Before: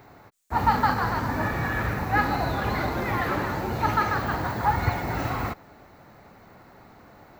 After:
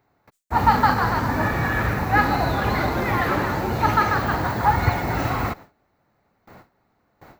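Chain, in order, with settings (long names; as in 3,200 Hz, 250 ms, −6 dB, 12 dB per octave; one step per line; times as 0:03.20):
noise gate with hold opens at −39 dBFS
level +4.5 dB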